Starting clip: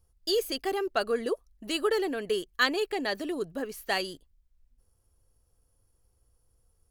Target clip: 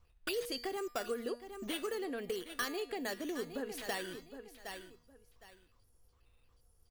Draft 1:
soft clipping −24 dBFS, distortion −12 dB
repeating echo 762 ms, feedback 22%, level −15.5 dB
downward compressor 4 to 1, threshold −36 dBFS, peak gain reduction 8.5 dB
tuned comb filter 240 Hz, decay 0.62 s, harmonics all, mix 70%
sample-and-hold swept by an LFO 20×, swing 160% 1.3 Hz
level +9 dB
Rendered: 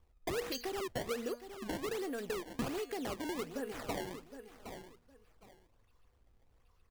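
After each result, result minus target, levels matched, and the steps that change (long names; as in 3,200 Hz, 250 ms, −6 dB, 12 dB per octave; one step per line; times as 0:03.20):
sample-and-hold swept by an LFO: distortion +8 dB; soft clipping: distortion +8 dB
change: sample-and-hold swept by an LFO 4×, swing 160% 1.3 Hz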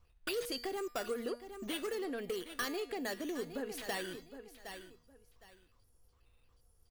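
soft clipping: distortion +8 dB
change: soft clipping −17 dBFS, distortion −20 dB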